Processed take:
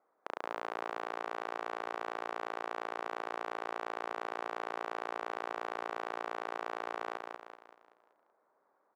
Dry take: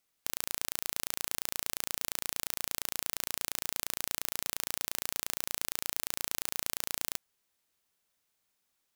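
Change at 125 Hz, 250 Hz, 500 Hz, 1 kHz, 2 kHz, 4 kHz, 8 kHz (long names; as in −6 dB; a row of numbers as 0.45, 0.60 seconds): below −10 dB, +2.5 dB, +9.5 dB, +10.0 dB, +1.0 dB, −13.5 dB, −27.5 dB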